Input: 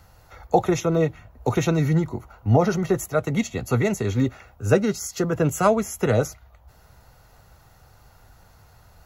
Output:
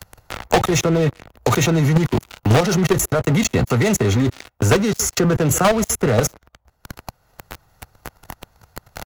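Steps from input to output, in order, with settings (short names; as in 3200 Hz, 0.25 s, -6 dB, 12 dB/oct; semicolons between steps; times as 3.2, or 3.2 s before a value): speakerphone echo 0.14 s, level -25 dB; level quantiser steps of 17 dB; sample leveller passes 5; three-band squash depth 70%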